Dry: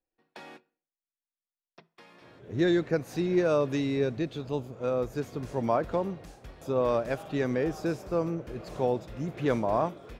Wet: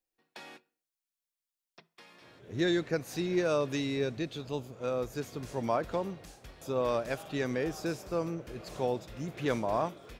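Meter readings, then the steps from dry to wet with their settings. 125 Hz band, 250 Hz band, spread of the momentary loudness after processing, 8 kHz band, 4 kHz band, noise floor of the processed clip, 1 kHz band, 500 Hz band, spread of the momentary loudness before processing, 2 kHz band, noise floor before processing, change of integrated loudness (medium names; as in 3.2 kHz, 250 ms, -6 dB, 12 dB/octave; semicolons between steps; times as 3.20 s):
-4.5 dB, -4.5 dB, 14 LU, no reading, +2.5 dB, under -85 dBFS, -3.0 dB, -4.0 dB, 12 LU, -0.5 dB, under -85 dBFS, -4.0 dB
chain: treble shelf 2.1 kHz +9 dB; trim -4.5 dB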